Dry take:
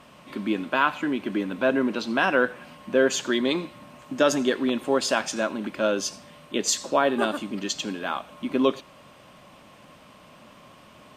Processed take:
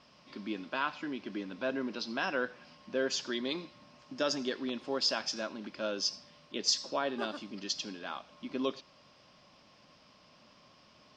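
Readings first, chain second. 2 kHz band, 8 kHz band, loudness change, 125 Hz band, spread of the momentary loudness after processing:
-11.0 dB, -9.5 dB, -10.0 dB, -12.0 dB, 12 LU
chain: four-pole ladder low-pass 5.5 kHz, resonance 75%

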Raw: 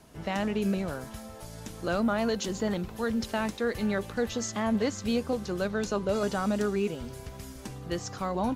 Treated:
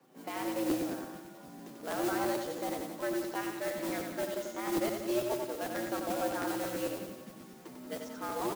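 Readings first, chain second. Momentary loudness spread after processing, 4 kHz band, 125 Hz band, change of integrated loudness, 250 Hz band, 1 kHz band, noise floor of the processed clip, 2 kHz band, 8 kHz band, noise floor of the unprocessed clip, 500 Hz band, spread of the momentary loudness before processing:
15 LU, -5.5 dB, -13.0 dB, -5.0 dB, -6.0 dB, -2.5 dB, -51 dBFS, -5.0 dB, -3.5 dB, -44 dBFS, -4.5 dB, 14 LU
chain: low-pass 2.1 kHz 6 dB/octave; in parallel at -11.5 dB: bit crusher 4-bit; on the sum: frequency shift +120 Hz; modulation noise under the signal 12 dB; flange 0.37 Hz, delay 7.7 ms, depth 3 ms, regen +53%; on a send: feedback delay 91 ms, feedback 57%, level -5 dB; on the sum: crackling interface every 0.11 s, samples 512, repeat, from 0.69 s; trim -4.5 dB

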